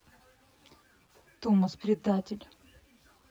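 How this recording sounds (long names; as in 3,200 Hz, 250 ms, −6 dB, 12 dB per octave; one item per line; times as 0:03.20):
a quantiser's noise floor 10 bits, dither none
tremolo triangle 2 Hz, depth 30%
a shimmering, thickened sound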